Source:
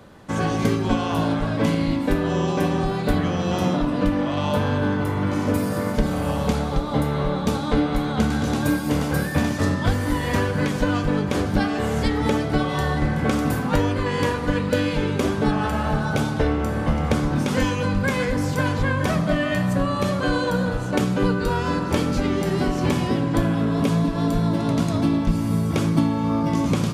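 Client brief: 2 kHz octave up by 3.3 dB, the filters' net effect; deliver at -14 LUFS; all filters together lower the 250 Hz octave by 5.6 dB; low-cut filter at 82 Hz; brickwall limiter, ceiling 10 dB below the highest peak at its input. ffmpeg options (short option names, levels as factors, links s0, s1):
-af "highpass=82,equalizer=f=250:t=o:g=-7.5,equalizer=f=2000:t=o:g=4.5,volume=4.22,alimiter=limit=0.596:level=0:latency=1"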